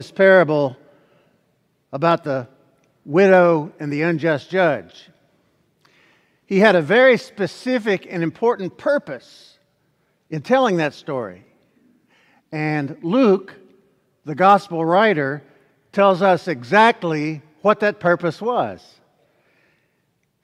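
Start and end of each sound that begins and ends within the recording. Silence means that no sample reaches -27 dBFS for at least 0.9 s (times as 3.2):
1.93–4.81
6.51–9.17
10.33–11.31
12.53–18.74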